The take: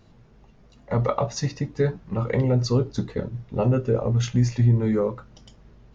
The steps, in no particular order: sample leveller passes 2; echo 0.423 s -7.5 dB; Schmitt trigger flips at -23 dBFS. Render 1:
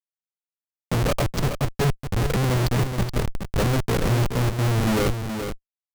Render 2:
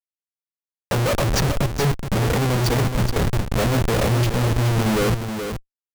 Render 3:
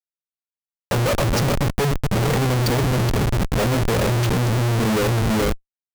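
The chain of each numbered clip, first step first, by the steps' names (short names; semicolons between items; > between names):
Schmitt trigger > sample leveller > echo; sample leveller > Schmitt trigger > echo; sample leveller > echo > Schmitt trigger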